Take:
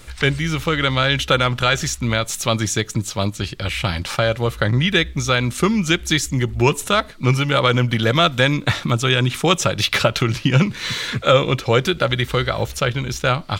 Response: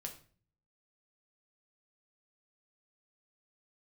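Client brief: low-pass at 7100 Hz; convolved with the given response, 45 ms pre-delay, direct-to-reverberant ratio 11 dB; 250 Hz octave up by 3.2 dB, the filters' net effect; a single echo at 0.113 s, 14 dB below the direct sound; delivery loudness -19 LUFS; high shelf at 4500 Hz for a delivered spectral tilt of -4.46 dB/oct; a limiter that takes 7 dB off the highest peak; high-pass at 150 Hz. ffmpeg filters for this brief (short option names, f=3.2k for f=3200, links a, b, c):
-filter_complex "[0:a]highpass=150,lowpass=7.1k,equalizer=f=250:t=o:g=5.5,highshelf=f=4.5k:g=-7,alimiter=limit=-8.5dB:level=0:latency=1,aecho=1:1:113:0.2,asplit=2[a][b];[1:a]atrim=start_sample=2205,adelay=45[c];[b][c]afir=irnorm=-1:irlink=0,volume=-8dB[d];[a][d]amix=inputs=2:normalize=0,volume=2dB"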